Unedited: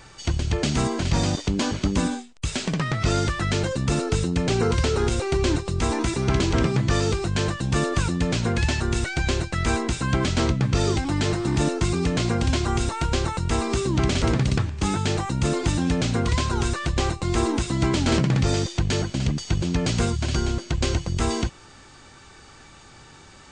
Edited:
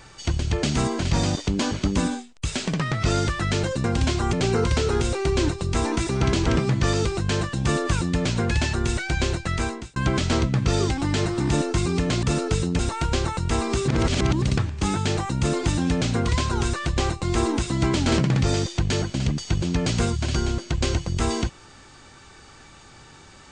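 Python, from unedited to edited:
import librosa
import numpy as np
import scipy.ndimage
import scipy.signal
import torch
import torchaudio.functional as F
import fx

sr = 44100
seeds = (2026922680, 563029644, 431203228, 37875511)

y = fx.edit(x, sr, fx.swap(start_s=3.84, length_s=0.56, other_s=12.3, other_length_s=0.49),
    fx.fade_out_span(start_s=9.56, length_s=0.47),
    fx.reverse_span(start_s=13.88, length_s=0.54), tone=tone)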